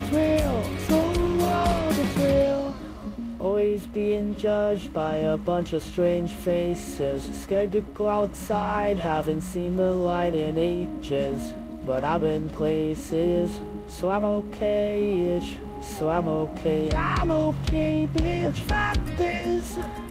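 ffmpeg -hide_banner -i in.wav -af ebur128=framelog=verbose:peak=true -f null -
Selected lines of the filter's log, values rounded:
Integrated loudness:
  I:         -25.6 LUFS
  Threshold: -35.7 LUFS
Loudness range:
  LRA:         2.0 LU
  Threshold: -45.9 LUFS
  LRA low:   -26.7 LUFS
  LRA high:  -24.7 LUFS
True peak:
  Peak:      -11.0 dBFS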